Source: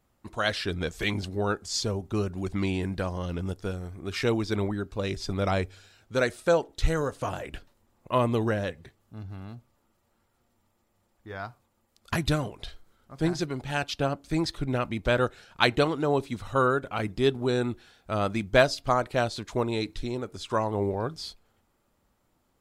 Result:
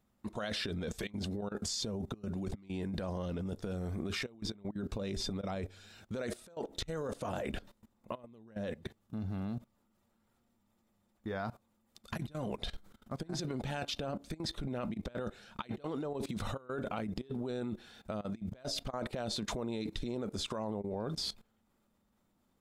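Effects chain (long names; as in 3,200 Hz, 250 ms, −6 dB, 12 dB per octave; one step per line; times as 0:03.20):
hollow resonant body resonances 210/3,600 Hz, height 11 dB, ringing for 65 ms
compressor whose output falls as the input rises −30 dBFS, ratio −0.5
dynamic equaliser 540 Hz, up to +6 dB, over −47 dBFS, Q 1.3
output level in coarse steps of 19 dB
level +1 dB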